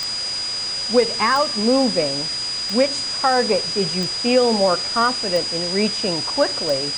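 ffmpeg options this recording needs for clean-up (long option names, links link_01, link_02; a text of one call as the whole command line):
ffmpeg -i in.wav -af "adeclick=threshold=4,bandreject=frequency=126.4:width_type=h:width=4,bandreject=frequency=252.8:width_type=h:width=4,bandreject=frequency=379.2:width_type=h:width=4,bandreject=frequency=4900:width=30,afwtdn=0.032" out.wav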